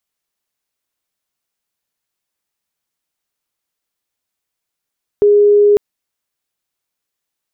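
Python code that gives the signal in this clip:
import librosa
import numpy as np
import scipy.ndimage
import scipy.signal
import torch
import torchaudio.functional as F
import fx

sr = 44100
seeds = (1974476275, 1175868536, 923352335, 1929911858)

y = 10.0 ** (-6.0 / 20.0) * np.sin(2.0 * np.pi * (412.0 * (np.arange(round(0.55 * sr)) / sr)))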